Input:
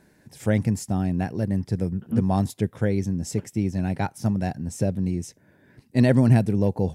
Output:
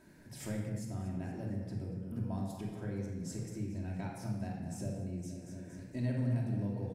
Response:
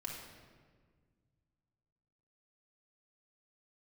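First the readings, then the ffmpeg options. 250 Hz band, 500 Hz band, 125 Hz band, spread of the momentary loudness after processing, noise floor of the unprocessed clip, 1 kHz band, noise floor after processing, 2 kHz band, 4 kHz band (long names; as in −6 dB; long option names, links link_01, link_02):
−15.0 dB, −17.0 dB, −13.5 dB, 10 LU, −60 dBFS, −17.0 dB, −51 dBFS, −16.5 dB, −13.5 dB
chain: -filter_complex "[0:a]aecho=1:1:233|466|699|932|1165:0.211|0.108|0.055|0.028|0.0143,acompressor=threshold=-40dB:ratio=3[link_01];[1:a]atrim=start_sample=2205,afade=type=out:start_time=0.31:duration=0.01,atrim=end_sample=14112[link_02];[link_01][link_02]afir=irnorm=-1:irlink=0"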